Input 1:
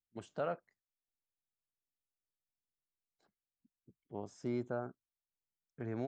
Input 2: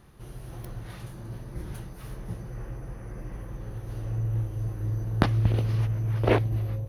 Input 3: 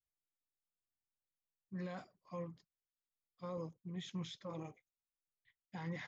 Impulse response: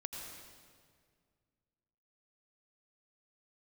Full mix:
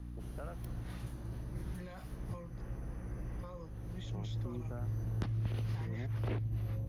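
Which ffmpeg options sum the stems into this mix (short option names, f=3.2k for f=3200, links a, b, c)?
-filter_complex "[0:a]afwtdn=0.00398,volume=-4.5dB[a];[1:a]aeval=exprs='val(0)+0.0141*(sin(2*PI*60*n/s)+sin(2*PI*2*60*n/s)/2+sin(2*PI*3*60*n/s)/3+sin(2*PI*4*60*n/s)/4+sin(2*PI*5*60*n/s)/5)':c=same,aeval=exprs='0.708*sin(PI/2*1.58*val(0)/0.708)':c=same,volume=-14dB[b];[2:a]equalizer=f=65:w=0.72:g=-12.5,volume=-2dB,asplit=2[c][d];[d]apad=whole_len=303569[e];[b][e]sidechaincompress=threshold=-52dB:ratio=3:attack=16:release=363[f];[a][f][c]amix=inputs=3:normalize=0,acrossover=split=280|900[g][h][i];[g]acompressor=threshold=-33dB:ratio=4[j];[h]acompressor=threshold=-52dB:ratio=4[k];[i]acompressor=threshold=-51dB:ratio=4[l];[j][k][l]amix=inputs=3:normalize=0"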